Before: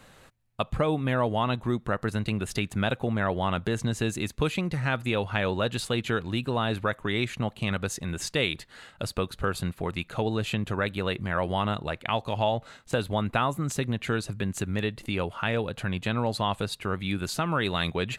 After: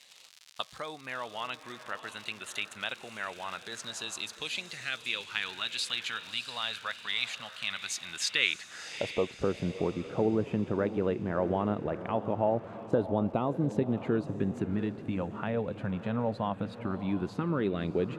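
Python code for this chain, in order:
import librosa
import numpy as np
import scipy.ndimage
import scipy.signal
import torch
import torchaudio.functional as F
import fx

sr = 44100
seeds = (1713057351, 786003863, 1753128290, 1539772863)

y = fx.recorder_agc(x, sr, target_db=-17.5, rise_db_per_s=11.0, max_gain_db=30)
y = fx.filter_lfo_notch(y, sr, shape='sine', hz=0.11, low_hz=340.0, high_hz=5100.0, q=1.4)
y = fx.dmg_crackle(y, sr, seeds[0], per_s=160.0, level_db=-35.0)
y = fx.filter_sweep_bandpass(y, sr, from_hz=4200.0, to_hz=340.0, start_s=8.1, end_s=9.48, q=1.0)
y = fx.echo_diffused(y, sr, ms=656, feedback_pct=43, wet_db=-12)
y = y * librosa.db_to_amplitude(3.0)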